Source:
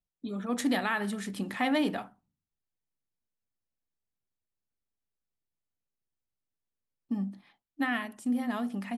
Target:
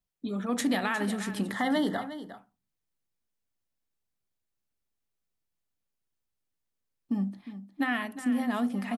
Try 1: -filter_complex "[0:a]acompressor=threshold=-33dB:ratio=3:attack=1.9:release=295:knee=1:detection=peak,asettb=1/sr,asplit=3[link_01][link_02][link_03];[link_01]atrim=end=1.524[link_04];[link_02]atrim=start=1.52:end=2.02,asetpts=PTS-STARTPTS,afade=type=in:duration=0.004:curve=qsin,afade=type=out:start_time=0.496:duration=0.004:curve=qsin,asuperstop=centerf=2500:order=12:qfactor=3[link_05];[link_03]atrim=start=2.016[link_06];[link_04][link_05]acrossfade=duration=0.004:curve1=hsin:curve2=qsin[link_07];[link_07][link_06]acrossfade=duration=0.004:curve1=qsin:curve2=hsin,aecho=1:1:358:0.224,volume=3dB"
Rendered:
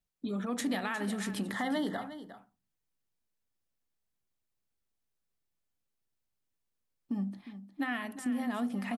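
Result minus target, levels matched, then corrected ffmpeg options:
downward compressor: peak gain reduction +5.5 dB
-filter_complex "[0:a]acompressor=threshold=-25dB:ratio=3:attack=1.9:release=295:knee=1:detection=peak,asettb=1/sr,asplit=3[link_01][link_02][link_03];[link_01]atrim=end=1.524[link_04];[link_02]atrim=start=1.52:end=2.02,asetpts=PTS-STARTPTS,afade=type=in:duration=0.004:curve=qsin,afade=type=out:start_time=0.496:duration=0.004:curve=qsin,asuperstop=centerf=2500:order=12:qfactor=3[link_05];[link_03]atrim=start=2.016[link_06];[link_04][link_05]acrossfade=duration=0.004:curve1=hsin:curve2=qsin[link_07];[link_07][link_06]acrossfade=duration=0.004:curve1=qsin:curve2=hsin,aecho=1:1:358:0.224,volume=3dB"

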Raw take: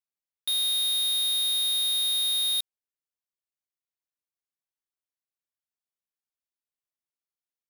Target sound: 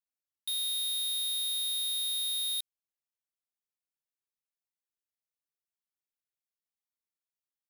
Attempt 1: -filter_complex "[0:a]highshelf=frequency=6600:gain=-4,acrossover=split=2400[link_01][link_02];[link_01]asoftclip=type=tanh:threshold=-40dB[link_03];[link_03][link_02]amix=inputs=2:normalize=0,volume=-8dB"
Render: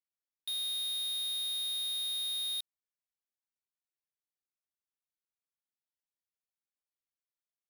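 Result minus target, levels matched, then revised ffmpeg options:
8,000 Hz band −4.0 dB
-filter_complex "[0:a]highshelf=frequency=6600:gain=4.5,acrossover=split=2400[link_01][link_02];[link_01]asoftclip=type=tanh:threshold=-40dB[link_03];[link_03][link_02]amix=inputs=2:normalize=0,volume=-8dB"

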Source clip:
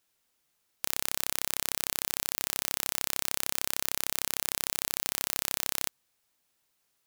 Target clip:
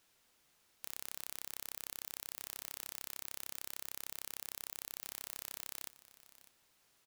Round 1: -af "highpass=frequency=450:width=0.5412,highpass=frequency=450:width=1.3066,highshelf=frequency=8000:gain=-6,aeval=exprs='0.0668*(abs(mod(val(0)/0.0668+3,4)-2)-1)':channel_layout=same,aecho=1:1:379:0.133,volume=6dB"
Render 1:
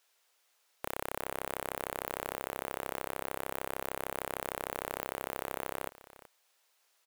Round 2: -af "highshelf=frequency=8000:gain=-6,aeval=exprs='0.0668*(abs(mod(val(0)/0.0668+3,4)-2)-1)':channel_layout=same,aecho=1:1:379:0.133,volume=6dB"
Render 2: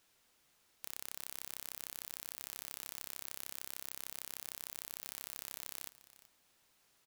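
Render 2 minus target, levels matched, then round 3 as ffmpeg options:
echo 221 ms early
-af "highshelf=frequency=8000:gain=-6,aeval=exprs='0.0668*(abs(mod(val(0)/0.0668+3,4)-2)-1)':channel_layout=same,aecho=1:1:600:0.133,volume=6dB"

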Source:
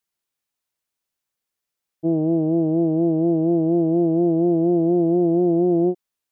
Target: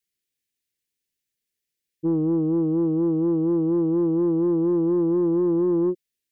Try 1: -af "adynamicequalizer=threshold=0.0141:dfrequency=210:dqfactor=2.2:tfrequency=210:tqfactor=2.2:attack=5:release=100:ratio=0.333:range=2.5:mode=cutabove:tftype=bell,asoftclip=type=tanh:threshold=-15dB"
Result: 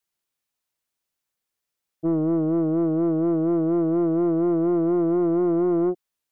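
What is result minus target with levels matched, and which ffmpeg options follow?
1,000 Hz band +5.0 dB
-af "adynamicequalizer=threshold=0.0141:dfrequency=210:dqfactor=2.2:tfrequency=210:tqfactor=2.2:attack=5:release=100:ratio=0.333:range=2.5:mode=cutabove:tftype=bell,asuperstop=centerf=920:order=8:qfactor=0.77,asoftclip=type=tanh:threshold=-15dB"

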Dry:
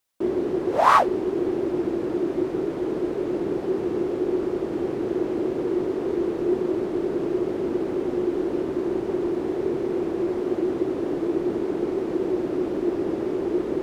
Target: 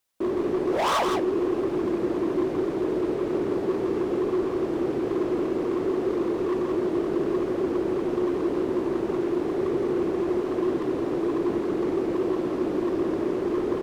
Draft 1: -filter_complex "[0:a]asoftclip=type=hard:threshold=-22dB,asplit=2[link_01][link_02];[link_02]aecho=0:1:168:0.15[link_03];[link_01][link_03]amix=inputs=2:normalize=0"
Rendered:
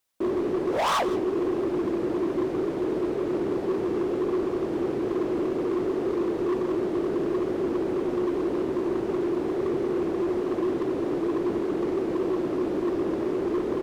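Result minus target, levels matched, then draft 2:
echo-to-direct −11 dB
-filter_complex "[0:a]asoftclip=type=hard:threshold=-22dB,asplit=2[link_01][link_02];[link_02]aecho=0:1:168:0.531[link_03];[link_01][link_03]amix=inputs=2:normalize=0"

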